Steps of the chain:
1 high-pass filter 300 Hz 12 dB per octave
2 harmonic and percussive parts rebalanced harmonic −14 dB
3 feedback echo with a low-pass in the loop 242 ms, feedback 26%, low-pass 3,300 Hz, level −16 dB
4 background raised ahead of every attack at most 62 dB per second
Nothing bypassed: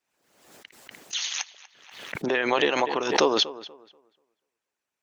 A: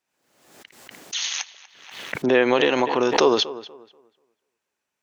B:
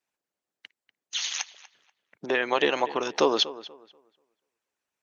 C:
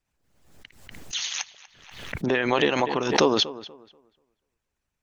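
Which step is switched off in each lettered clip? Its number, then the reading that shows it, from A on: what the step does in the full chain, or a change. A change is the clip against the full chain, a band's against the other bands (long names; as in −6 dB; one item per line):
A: 2, 250 Hz band +4.0 dB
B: 4, change in crest factor −4.0 dB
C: 1, 125 Hz band +9.5 dB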